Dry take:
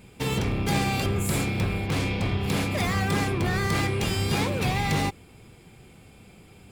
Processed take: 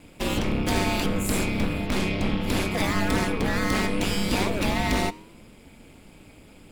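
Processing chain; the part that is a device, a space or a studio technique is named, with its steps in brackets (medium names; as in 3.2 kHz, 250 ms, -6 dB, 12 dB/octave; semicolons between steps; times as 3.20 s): alien voice (ring modulator 100 Hz; flange 0.32 Hz, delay 6.7 ms, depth 6.4 ms, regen -90%); trim +8.5 dB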